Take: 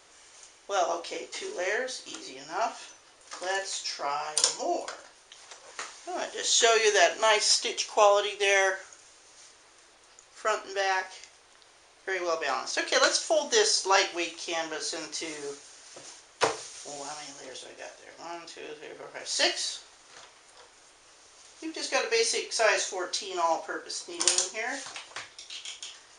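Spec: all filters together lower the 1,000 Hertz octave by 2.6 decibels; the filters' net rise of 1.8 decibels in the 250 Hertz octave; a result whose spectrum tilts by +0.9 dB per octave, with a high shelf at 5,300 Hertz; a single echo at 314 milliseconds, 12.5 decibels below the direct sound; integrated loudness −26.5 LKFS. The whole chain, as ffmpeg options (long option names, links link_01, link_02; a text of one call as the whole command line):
ffmpeg -i in.wav -af "equalizer=frequency=250:width_type=o:gain=3.5,equalizer=frequency=1000:width_type=o:gain=-4,highshelf=frequency=5300:gain=4.5,aecho=1:1:314:0.237" out.wav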